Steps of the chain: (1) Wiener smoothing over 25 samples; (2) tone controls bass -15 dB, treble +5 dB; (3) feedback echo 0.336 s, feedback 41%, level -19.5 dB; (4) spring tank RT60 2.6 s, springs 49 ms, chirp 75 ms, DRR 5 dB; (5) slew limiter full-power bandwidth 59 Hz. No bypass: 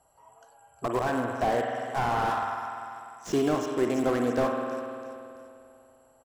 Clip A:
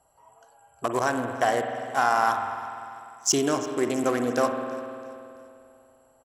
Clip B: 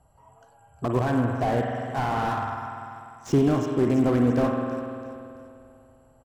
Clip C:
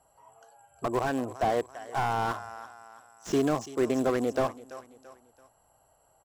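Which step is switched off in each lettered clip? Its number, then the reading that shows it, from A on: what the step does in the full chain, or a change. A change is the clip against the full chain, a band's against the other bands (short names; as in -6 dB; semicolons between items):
5, distortion -3 dB; 2, 125 Hz band +11.5 dB; 4, 8 kHz band +1.5 dB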